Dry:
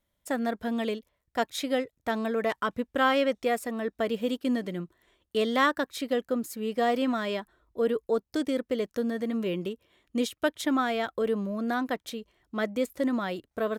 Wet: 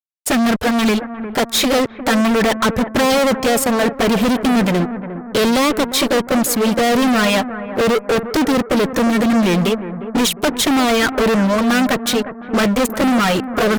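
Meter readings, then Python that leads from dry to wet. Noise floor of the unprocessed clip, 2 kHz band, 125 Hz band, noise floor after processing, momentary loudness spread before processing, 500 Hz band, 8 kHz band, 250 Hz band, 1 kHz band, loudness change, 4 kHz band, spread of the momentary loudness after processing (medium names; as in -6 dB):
-80 dBFS, +13.0 dB, +19.0 dB, -33 dBFS, 9 LU, +11.0 dB, +21.5 dB, +14.5 dB, +12.0 dB, +13.0 dB, +17.0 dB, 5 LU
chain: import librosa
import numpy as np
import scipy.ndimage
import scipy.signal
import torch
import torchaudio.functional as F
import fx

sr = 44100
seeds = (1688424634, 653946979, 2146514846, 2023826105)

y = fx.env_flanger(x, sr, rest_ms=10.1, full_db=-22.5)
y = fx.fuzz(y, sr, gain_db=43.0, gate_db=-53.0)
y = fx.echo_bbd(y, sr, ms=355, stages=4096, feedback_pct=46, wet_db=-11.5)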